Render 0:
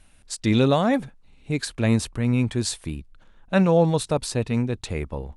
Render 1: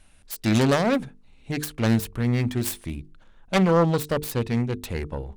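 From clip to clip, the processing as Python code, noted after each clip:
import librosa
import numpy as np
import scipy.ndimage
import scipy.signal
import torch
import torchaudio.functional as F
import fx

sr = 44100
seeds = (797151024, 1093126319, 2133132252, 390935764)

y = fx.self_delay(x, sr, depth_ms=0.38)
y = fx.hum_notches(y, sr, base_hz=50, count=9)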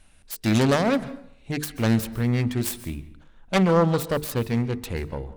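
y = fx.rev_plate(x, sr, seeds[0], rt60_s=0.63, hf_ratio=0.65, predelay_ms=120, drr_db=16.0)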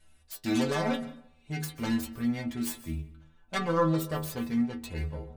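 y = fx.stiff_resonator(x, sr, f0_hz=76.0, decay_s=0.45, stiffness=0.008)
y = y * 10.0 ** (3.0 / 20.0)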